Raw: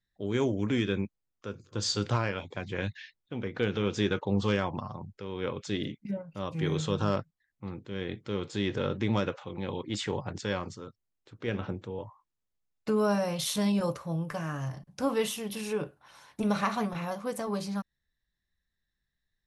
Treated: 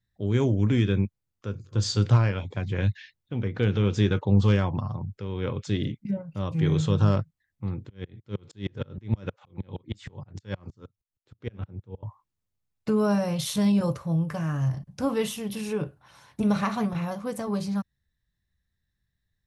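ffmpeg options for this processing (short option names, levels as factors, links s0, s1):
-filter_complex "[0:a]asettb=1/sr,asplit=3[s0][s1][s2];[s0]atrim=end=7.894[s3];[s1]atrim=start=7.89:end=12.03,asetpts=PTS-STARTPTS,afade=t=in:d=0.004:c=qsin,afade=t=out:st=4.136:d=0.004:c=qsin,aeval=exprs='val(0)*pow(10,-38*if(lt(mod(-6.4*n/s,1),2*abs(-6.4)/1000),1-mod(-6.4*n/s,1)/(2*abs(-6.4)/1000),(mod(-6.4*n/s,1)-2*abs(-6.4)/1000)/(1-2*abs(-6.4)/1000))/20)':c=same[s4];[s2]atrim=start=12.026[s5];[s3][s4]acrossfade=d=0.004:c1=hsin:c2=qsin[s6];[s6][s5]acrossfade=d=0.004:c1=qsin:c2=hsin,equalizer=f=97:w=0.71:g=12.5"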